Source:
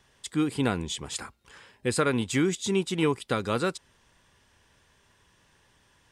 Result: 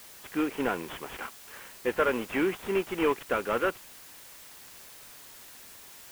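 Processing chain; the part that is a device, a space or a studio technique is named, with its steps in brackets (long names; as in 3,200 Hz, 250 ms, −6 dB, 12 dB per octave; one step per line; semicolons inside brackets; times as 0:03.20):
army field radio (band-pass filter 390–3,300 Hz; variable-slope delta modulation 16 kbit/s; white noise bed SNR 17 dB)
level +3.5 dB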